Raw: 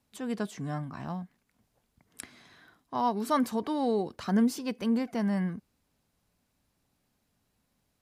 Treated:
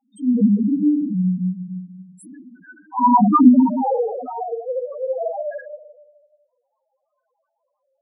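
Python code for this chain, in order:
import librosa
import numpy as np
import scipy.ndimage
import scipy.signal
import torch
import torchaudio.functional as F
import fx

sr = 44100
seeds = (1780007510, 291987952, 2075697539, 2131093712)

y = fx.ellip_highpass(x, sr, hz=fx.steps((0.0, 190.0), (3.44, 500.0)), order=4, stop_db=40)
y = fx.room_shoebox(y, sr, seeds[0], volume_m3=1000.0, walls='mixed', distance_m=8.9)
y = fx.spec_topn(y, sr, count=2)
y = y * librosa.db_to_amplitude(6.0)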